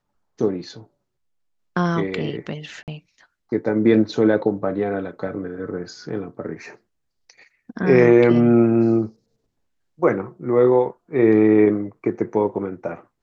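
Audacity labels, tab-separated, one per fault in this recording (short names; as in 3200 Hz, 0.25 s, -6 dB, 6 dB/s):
2.830000	2.880000	gap 48 ms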